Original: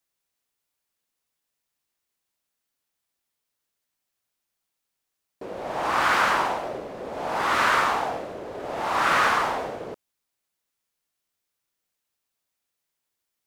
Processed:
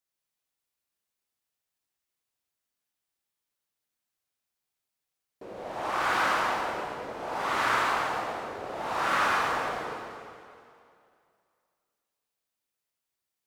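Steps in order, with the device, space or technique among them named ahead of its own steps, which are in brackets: stairwell (reverberation RT60 2.4 s, pre-delay 36 ms, DRR 0 dB); trim -7.5 dB

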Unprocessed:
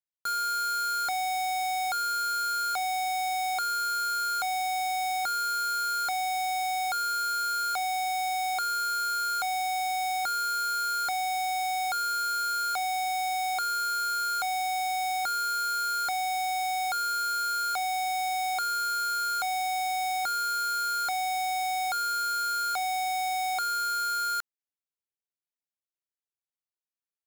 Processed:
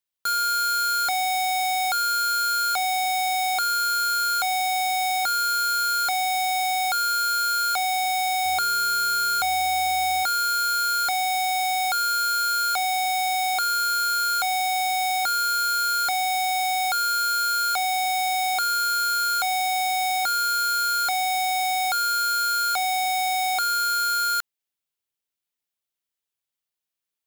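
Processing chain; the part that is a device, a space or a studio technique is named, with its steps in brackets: presence and air boost (peaking EQ 3.2 kHz +4.5 dB 0.95 oct; treble shelf 9.4 kHz +5.5 dB); 8.45–10.23 s: bass shelf 240 Hz +11.5 dB; trim +4.5 dB

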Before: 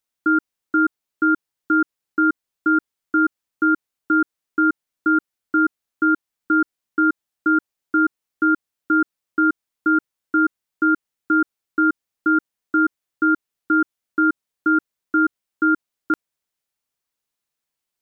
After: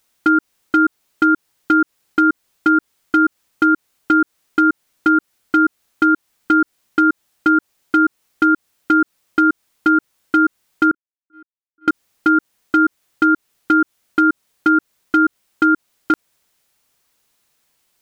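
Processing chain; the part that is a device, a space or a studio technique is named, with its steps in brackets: 10.91–11.88 s: gate -10 dBFS, range -59 dB; loud club master (compression 2.5:1, threshold -21 dBFS, peak gain reduction 5.5 dB; hard clipper -15 dBFS, distortion -24 dB; loudness maximiser +23 dB); trim -5.5 dB

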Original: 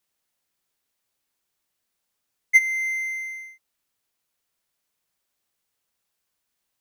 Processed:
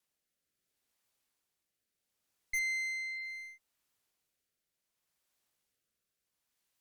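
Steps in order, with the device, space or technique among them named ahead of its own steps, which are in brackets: overdriven rotary cabinet (valve stage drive 31 dB, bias 0.45; rotary cabinet horn 0.7 Hz)

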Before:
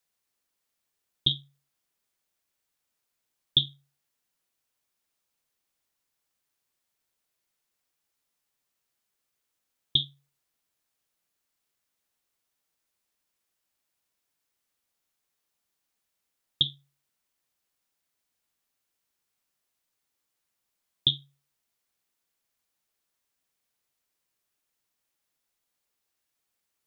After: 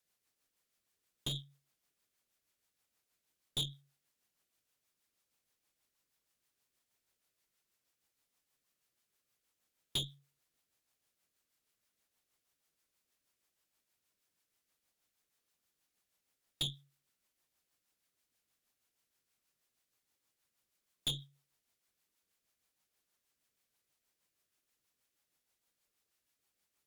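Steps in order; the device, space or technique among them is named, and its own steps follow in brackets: overdriven rotary cabinet (valve stage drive 33 dB, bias 0.35; rotary cabinet horn 6.3 Hz); trim +3 dB

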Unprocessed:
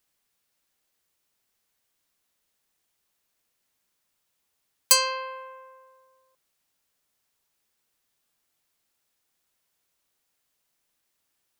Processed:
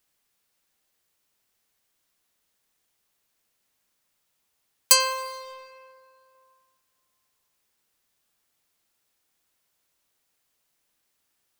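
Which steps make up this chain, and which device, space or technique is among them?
saturated reverb return (on a send at -9.5 dB: reverberation RT60 2.3 s, pre-delay 89 ms + saturation -29 dBFS, distortion -7 dB); on the sum: trim +1.5 dB

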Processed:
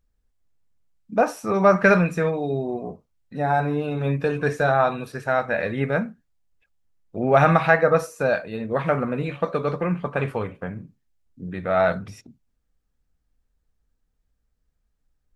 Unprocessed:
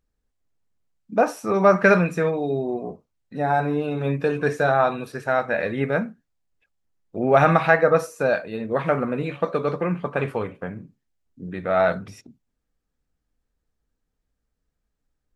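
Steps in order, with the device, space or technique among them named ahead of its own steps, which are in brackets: low shelf boost with a cut just above (bass shelf 96 Hz +7 dB; peaking EQ 340 Hz -2.5 dB 0.99 oct)

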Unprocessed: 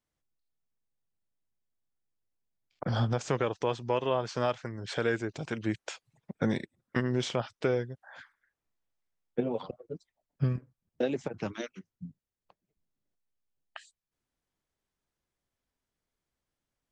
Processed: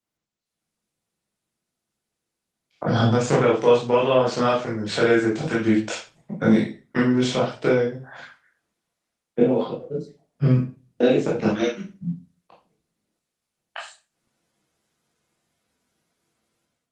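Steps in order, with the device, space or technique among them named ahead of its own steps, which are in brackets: far-field microphone of a smart speaker (reverberation RT60 0.35 s, pre-delay 16 ms, DRR -5 dB; high-pass 120 Hz 12 dB/octave; level rider gain up to 12 dB; trim -4 dB; Opus 20 kbps 48 kHz)

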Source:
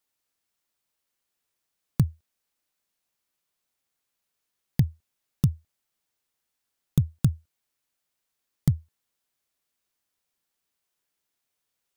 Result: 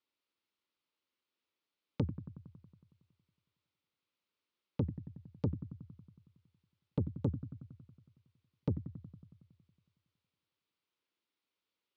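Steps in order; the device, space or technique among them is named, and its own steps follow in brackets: analogue delay pedal into a guitar amplifier (bucket-brigade echo 92 ms, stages 1024, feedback 70%, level -13 dB; valve stage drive 21 dB, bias 0.65; cabinet simulation 110–4300 Hz, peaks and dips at 140 Hz -10 dB, 320 Hz +4 dB, 720 Hz -9 dB, 1.7 kHz -7 dB); trim +1 dB

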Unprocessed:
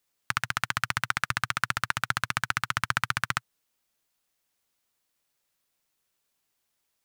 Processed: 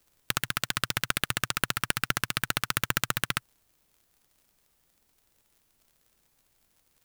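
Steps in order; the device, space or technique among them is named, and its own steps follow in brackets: record under a worn stylus (tracing distortion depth 0.43 ms; crackle -52 dBFS; pink noise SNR 40 dB); treble shelf 7 kHz +8 dB; trim -1.5 dB

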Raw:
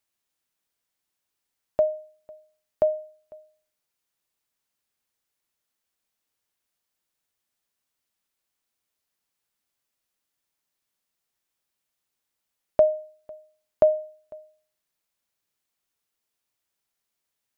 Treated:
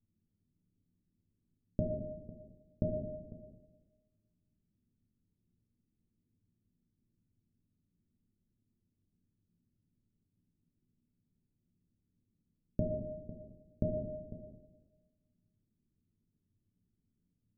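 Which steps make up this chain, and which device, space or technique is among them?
club heard from the street (peak limiter -20 dBFS, peak gain reduction 11 dB; low-pass 240 Hz 24 dB/octave; reverberation RT60 1.4 s, pre-delay 5 ms, DRR -1 dB); trim +18 dB

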